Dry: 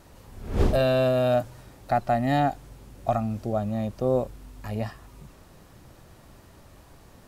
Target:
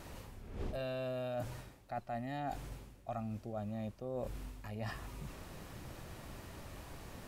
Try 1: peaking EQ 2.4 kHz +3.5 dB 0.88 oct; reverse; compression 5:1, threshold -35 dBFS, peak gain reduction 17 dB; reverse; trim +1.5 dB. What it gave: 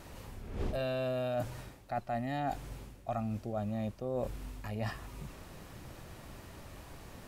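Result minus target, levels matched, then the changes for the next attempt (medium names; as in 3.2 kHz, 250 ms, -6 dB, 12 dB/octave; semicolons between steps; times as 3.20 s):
compression: peak gain reduction -5 dB
change: compression 5:1, threshold -41.5 dBFS, peak gain reduction 22 dB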